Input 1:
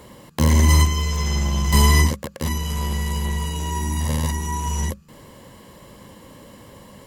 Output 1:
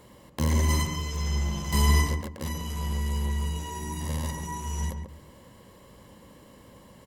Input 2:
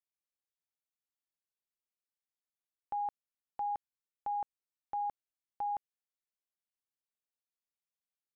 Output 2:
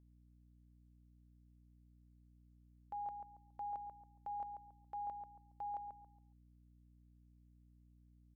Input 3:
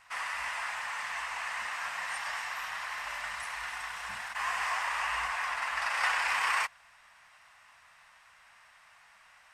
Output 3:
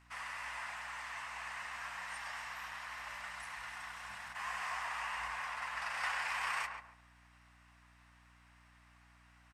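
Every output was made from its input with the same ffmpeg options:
ffmpeg -i in.wav -filter_complex "[0:a]asplit=2[link_01][link_02];[link_02]adelay=139,lowpass=frequency=1400:poles=1,volume=-4.5dB,asplit=2[link_03][link_04];[link_04]adelay=139,lowpass=frequency=1400:poles=1,volume=0.3,asplit=2[link_05][link_06];[link_06]adelay=139,lowpass=frequency=1400:poles=1,volume=0.3,asplit=2[link_07][link_08];[link_08]adelay=139,lowpass=frequency=1400:poles=1,volume=0.3[link_09];[link_01][link_03][link_05][link_07][link_09]amix=inputs=5:normalize=0,aeval=exprs='val(0)+0.00158*(sin(2*PI*60*n/s)+sin(2*PI*2*60*n/s)/2+sin(2*PI*3*60*n/s)/3+sin(2*PI*4*60*n/s)/4+sin(2*PI*5*60*n/s)/5)':channel_layout=same,volume=-8.5dB" out.wav

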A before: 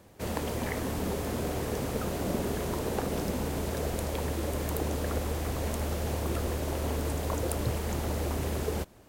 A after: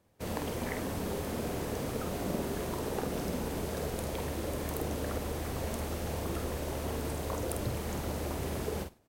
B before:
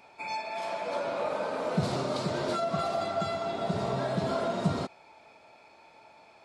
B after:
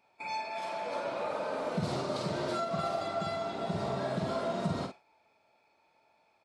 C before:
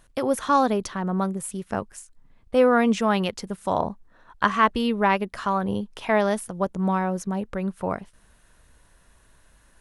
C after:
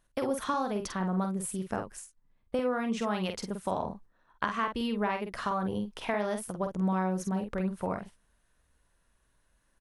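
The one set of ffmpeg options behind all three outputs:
ffmpeg -i in.wav -filter_complex "[0:a]bandreject=frequency=7100:width=30,agate=range=-11dB:threshold=-44dB:ratio=16:detection=peak,acompressor=threshold=-24dB:ratio=6,asplit=2[link_01][link_02];[link_02]adelay=48,volume=-6dB[link_03];[link_01][link_03]amix=inputs=2:normalize=0,volume=-3.5dB" out.wav

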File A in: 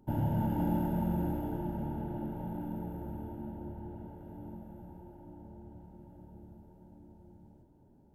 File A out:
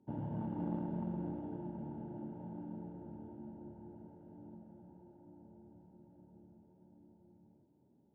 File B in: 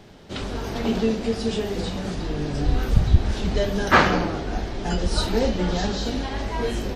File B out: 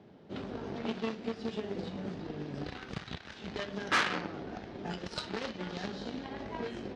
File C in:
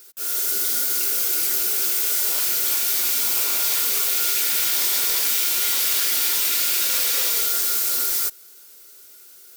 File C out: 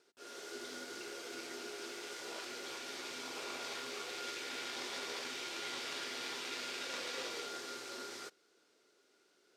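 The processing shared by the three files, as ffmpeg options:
ffmpeg -i in.wav -filter_complex "[0:a]aemphasis=mode=reproduction:type=50kf,aeval=exprs='0.708*(cos(1*acos(clip(val(0)/0.708,-1,1)))-cos(1*PI/2))+0.0178*(cos(6*acos(clip(val(0)/0.708,-1,1)))-cos(6*PI/2))+0.0794*(cos(7*acos(clip(val(0)/0.708,-1,1)))-cos(7*PI/2))':channel_layout=same,tiltshelf=frequency=760:gain=4.5,acrossover=split=1300[link_01][link_02];[link_01]acompressor=threshold=-34dB:ratio=12[link_03];[link_03][link_02]amix=inputs=2:normalize=0,aeval=exprs='(tanh(28.2*val(0)+0.55)-tanh(0.55))/28.2':channel_layout=same,highpass=150,lowpass=6000,volume=6.5dB" out.wav

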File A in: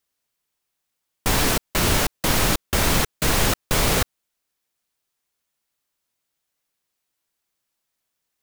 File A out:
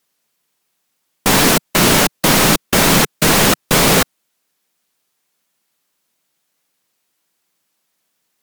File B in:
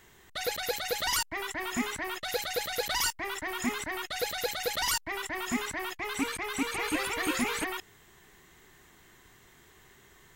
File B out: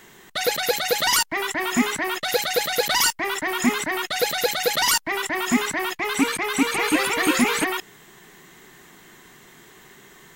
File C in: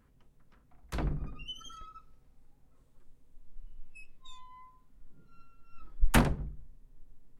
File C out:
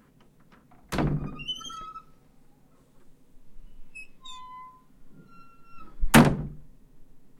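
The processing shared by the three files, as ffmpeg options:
ffmpeg -i in.wav -af "lowshelf=frequency=120:width_type=q:width=1.5:gain=-10,acontrast=83,volume=2.5dB" -ar 48000 -c:a aac -b:a 160k out.aac

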